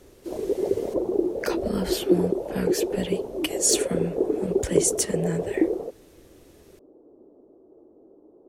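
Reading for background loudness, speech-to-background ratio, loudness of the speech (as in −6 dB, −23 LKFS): −26.5 LKFS, −1.5 dB, −28.0 LKFS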